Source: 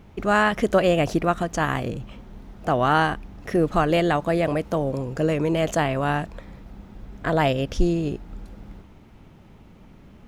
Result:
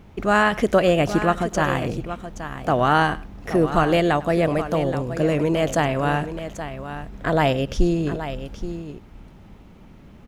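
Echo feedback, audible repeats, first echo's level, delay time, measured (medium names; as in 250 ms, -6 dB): no regular repeats, 2, -19.5 dB, 102 ms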